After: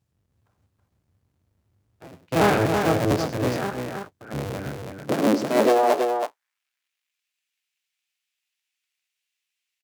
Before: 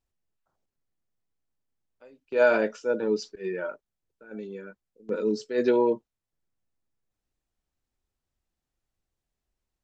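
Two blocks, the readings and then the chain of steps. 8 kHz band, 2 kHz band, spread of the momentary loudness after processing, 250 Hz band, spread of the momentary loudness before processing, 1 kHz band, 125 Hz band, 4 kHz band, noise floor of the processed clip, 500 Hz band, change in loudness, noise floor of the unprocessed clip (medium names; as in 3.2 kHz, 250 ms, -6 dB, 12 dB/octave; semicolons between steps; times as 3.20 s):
no reading, +3.0 dB, 14 LU, +6.5 dB, 18 LU, +12.0 dB, +20.0 dB, +11.0 dB, -83 dBFS, +2.5 dB, +3.5 dB, under -85 dBFS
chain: cycle switcher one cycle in 3, inverted; bass shelf 190 Hz +6 dB; in parallel at -2 dB: compression, threshold -33 dBFS, peak gain reduction 17.5 dB; on the sum: one-sided clip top -16.5 dBFS; high-pass sweep 100 Hz -> 2.5 kHz, 4.77–6.64 s; on a send: multi-tap echo 98/326 ms -12.5/-5 dB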